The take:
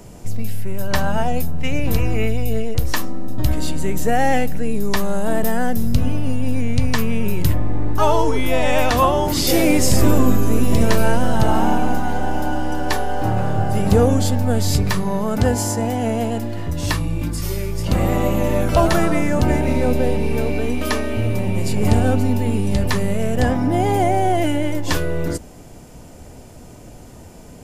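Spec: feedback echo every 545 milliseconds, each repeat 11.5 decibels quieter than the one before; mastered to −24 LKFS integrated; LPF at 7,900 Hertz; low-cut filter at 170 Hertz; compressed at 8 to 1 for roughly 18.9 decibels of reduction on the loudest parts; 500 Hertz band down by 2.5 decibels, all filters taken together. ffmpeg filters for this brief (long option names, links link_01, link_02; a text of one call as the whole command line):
ffmpeg -i in.wav -af "highpass=170,lowpass=7900,equalizer=frequency=500:width_type=o:gain=-3,acompressor=threshold=-34dB:ratio=8,aecho=1:1:545|1090|1635:0.266|0.0718|0.0194,volume=13dB" out.wav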